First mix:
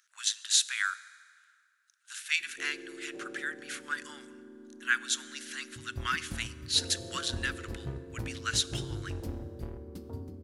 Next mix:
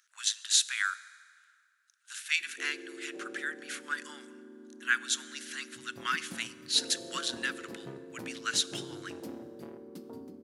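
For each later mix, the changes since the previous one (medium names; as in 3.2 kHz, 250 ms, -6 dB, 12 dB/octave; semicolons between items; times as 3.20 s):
master: add high-pass 180 Hz 24 dB/octave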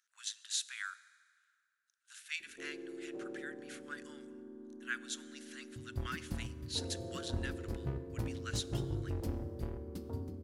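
speech -11.5 dB; master: remove high-pass 180 Hz 24 dB/octave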